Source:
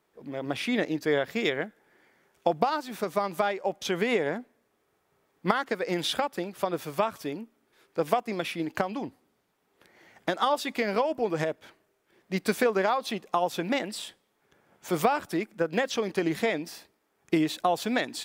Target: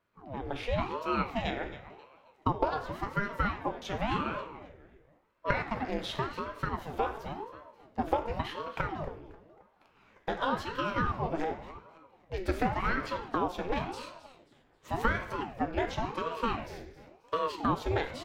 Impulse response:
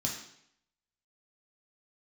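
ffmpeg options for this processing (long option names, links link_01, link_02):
-filter_complex "[0:a]bass=frequency=250:gain=-3,treble=frequency=4000:gain=-15,bandreject=frequency=95.29:width_type=h:width=4,bandreject=frequency=190.58:width_type=h:width=4,bandreject=frequency=285.87:width_type=h:width=4,bandreject=frequency=381.16:width_type=h:width=4,bandreject=frequency=476.45:width_type=h:width=4,bandreject=frequency=571.74:width_type=h:width=4,bandreject=frequency=667.03:width_type=h:width=4,bandreject=frequency=762.32:width_type=h:width=4,bandreject=frequency=857.61:width_type=h:width=4,bandreject=frequency=952.9:width_type=h:width=4,bandreject=frequency=1048.19:width_type=h:width=4,bandreject=frequency=1143.48:width_type=h:width=4,bandreject=frequency=1238.77:width_type=h:width=4,bandreject=frequency=1334.06:width_type=h:width=4,bandreject=frequency=1429.35:width_type=h:width=4,bandreject=frequency=1524.64:width_type=h:width=4,bandreject=frequency=1619.93:width_type=h:width=4,bandreject=frequency=1715.22:width_type=h:width=4,bandreject=frequency=1810.51:width_type=h:width=4,bandreject=frequency=1905.8:width_type=h:width=4,bandreject=frequency=2001.09:width_type=h:width=4,bandreject=frequency=2096.38:width_type=h:width=4,bandreject=frequency=2191.67:width_type=h:width=4,bandreject=frequency=2286.96:width_type=h:width=4,bandreject=frequency=2382.25:width_type=h:width=4,bandreject=frequency=2477.54:width_type=h:width=4,bandreject=frequency=2572.83:width_type=h:width=4,bandreject=frequency=2668.12:width_type=h:width=4,bandreject=frequency=2763.41:width_type=h:width=4,bandreject=frequency=2858.7:width_type=h:width=4,bandreject=frequency=2953.99:width_type=h:width=4,asplit=4[link_01][link_02][link_03][link_04];[link_02]adelay=268,afreqshift=-74,volume=-15dB[link_05];[link_03]adelay=536,afreqshift=-148,volume=-23.9dB[link_06];[link_04]adelay=804,afreqshift=-222,volume=-32.7dB[link_07];[link_01][link_05][link_06][link_07]amix=inputs=4:normalize=0,asplit=2[link_08][link_09];[1:a]atrim=start_sample=2205,highshelf=frequency=8300:gain=6.5[link_10];[link_09][link_10]afir=irnorm=-1:irlink=0,volume=-6.5dB[link_11];[link_08][link_11]amix=inputs=2:normalize=0,aeval=exprs='val(0)*sin(2*PI*480*n/s+480*0.7/0.92*sin(2*PI*0.92*n/s))':channel_layout=same,volume=-4dB"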